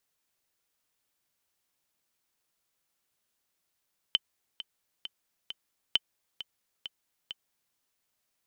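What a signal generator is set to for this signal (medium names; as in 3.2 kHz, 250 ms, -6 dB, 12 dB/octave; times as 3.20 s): metronome 133 bpm, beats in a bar 4, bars 2, 3.06 kHz, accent 14.5 dB -10 dBFS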